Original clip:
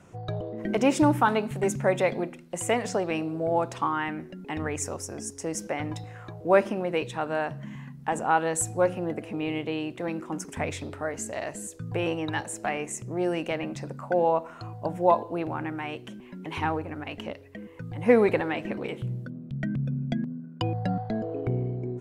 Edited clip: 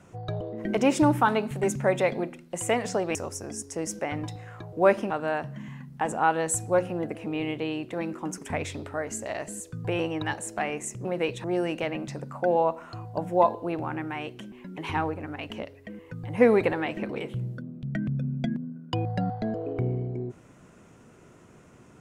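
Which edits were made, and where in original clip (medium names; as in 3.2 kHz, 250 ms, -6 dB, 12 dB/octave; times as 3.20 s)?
3.15–4.83 s: delete
6.78–7.17 s: move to 13.12 s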